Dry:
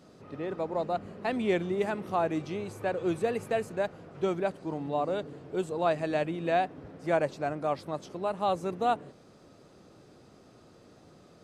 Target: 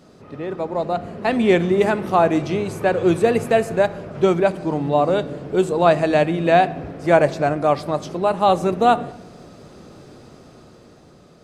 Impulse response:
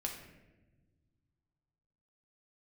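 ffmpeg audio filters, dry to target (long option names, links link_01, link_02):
-filter_complex "[0:a]dynaudnorm=framelen=250:gausssize=9:maxgain=6dB,asplit=2[link_01][link_02];[1:a]atrim=start_sample=2205,lowshelf=frequency=120:gain=9[link_03];[link_02][link_03]afir=irnorm=-1:irlink=0,volume=-9dB[link_04];[link_01][link_04]amix=inputs=2:normalize=0,volume=4dB"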